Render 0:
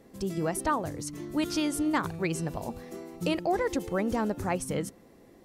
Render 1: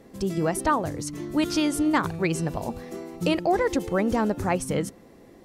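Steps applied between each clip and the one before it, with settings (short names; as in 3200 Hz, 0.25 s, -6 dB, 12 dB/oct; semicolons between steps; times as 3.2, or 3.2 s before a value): high shelf 9400 Hz -4.5 dB; gain +5 dB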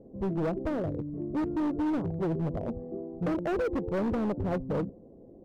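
Chebyshev low-pass 590 Hz, order 3; overloaded stage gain 26 dB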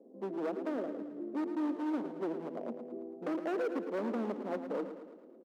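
steep high-pass 220 Hz 48 dB/oct; on a send: feedback echo 0.11 s, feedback 56%, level -10 dB; on the sum: gain -5 dB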